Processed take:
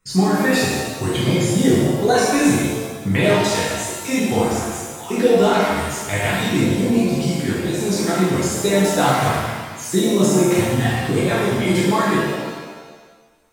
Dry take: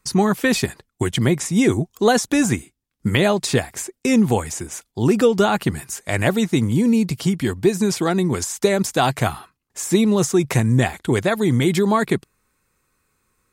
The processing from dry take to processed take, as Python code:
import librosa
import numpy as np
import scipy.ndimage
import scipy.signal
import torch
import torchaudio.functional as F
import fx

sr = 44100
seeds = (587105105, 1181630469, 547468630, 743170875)

y = fx.spec_dropout(x, sr, seeds[0], share_pct=22)
y = fx.vibrato(y, sr, rate_hz=5.5, depth_cents=5.7)
y = fx.rev_shimmer(y, sr, seeds[1], rt60_s=1.4, semitones=7, shimmer_db=-8, drr_db=-8.5)
y = y * librosa.db_to_amplitude(-6.5)